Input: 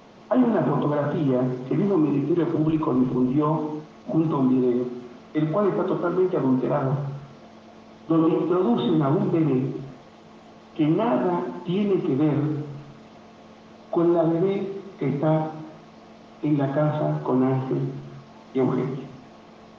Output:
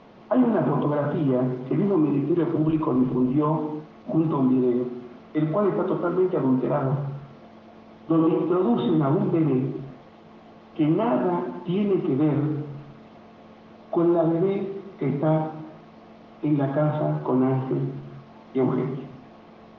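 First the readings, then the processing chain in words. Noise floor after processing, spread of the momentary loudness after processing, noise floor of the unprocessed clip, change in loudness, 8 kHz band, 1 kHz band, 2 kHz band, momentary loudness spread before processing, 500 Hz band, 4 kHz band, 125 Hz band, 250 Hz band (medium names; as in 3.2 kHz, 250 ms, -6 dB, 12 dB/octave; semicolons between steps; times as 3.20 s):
-48 dBFS, 11 LU, -48 dBFS, -0.5 dB, no reading, -1.0 dB, -1.5 dB, 11 LU, -0.5 dB, -4.0 dB, 0.0 dB, -0.5 dB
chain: distance through air 170 m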